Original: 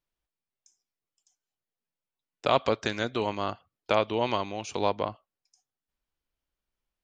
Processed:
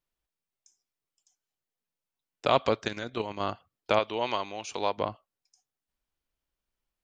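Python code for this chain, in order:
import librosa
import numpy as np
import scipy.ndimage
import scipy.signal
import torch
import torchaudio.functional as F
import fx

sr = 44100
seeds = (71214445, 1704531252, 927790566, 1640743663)

y = fx.level_steps(x, sr, step_db=9, at=(2.83, 3.4))
y = fx.low_shelf(y, sr, hz=320.0, db=-11.0, at=(3.99, 4.98))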